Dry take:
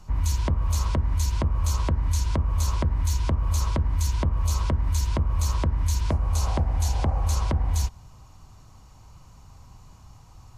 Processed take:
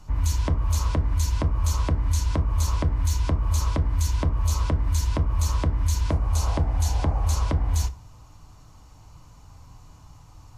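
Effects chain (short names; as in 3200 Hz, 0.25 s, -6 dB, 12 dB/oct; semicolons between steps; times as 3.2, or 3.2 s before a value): FDN reverb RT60 0.34 s, low-frequency decay 0.95×, high-frequency decay 0.65×, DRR 7.5 dB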